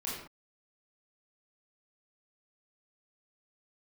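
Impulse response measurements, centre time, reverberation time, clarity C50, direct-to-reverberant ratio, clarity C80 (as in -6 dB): 57 ms, not exponential, 1.0 dB, -7.0 dB, 4.5 dB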